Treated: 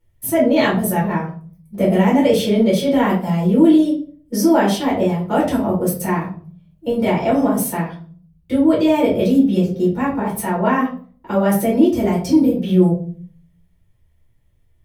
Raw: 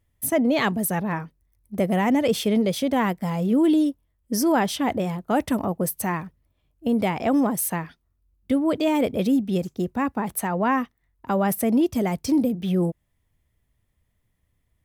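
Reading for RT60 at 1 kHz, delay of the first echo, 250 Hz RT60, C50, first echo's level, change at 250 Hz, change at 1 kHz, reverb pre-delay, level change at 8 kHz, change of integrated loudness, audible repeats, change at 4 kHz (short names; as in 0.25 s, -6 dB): 0.40 s, none, 0.75 s, 6.5 dB, none, +6.5 dB, +4.5 dB, 6 ms, +1.5 dB, +6.5 dB, none, +4.5 dB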